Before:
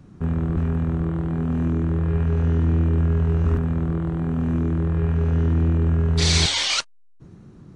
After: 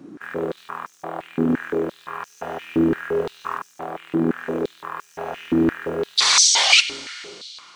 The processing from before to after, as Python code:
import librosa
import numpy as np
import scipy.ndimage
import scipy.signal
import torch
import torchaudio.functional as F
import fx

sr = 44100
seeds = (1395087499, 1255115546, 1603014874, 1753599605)

y = fx.rev_schroeder(x, sr, rt60_s=2.9, comb_ms=32, drr_db=13.5)
y = fx.quant_float(y, sr, bits=6)
y = fx.filter_held_highpass(y, sr, hz=5.8, low_hz=300.0, high_hz=5900.0)
y = y * librosa.db_to_amplitude(4.0)